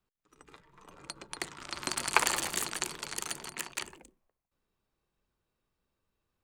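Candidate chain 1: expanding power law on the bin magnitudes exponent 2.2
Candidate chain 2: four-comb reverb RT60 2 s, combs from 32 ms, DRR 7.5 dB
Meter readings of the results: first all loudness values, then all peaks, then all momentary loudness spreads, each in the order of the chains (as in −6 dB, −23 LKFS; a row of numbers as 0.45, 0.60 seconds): −34.0, −32.5 LKFS; −4.5, −3.5 dBFS; 18, 19 LU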